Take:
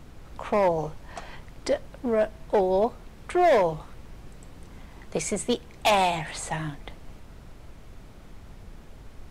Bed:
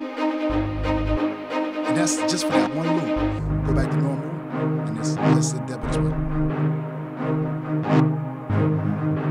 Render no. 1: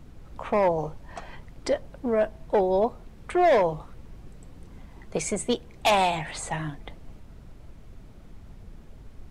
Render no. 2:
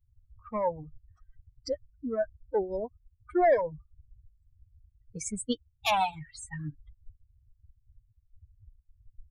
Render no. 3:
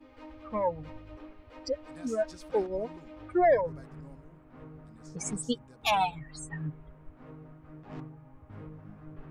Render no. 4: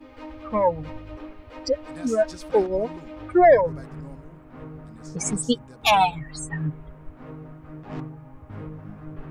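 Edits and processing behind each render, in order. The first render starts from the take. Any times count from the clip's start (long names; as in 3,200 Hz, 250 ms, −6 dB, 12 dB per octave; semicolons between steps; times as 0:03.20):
broadband denoise 6 dB, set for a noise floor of −47 dBFS
spectral dynamics exaggerated over time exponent 3
mix in bed −25 dB
level +8.5 dB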